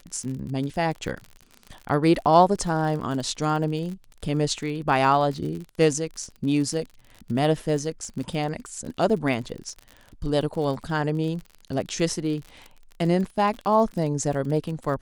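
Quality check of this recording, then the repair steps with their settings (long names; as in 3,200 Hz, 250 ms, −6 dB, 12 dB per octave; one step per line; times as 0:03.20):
surface crackle 42 per second −32 dBFS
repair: click removal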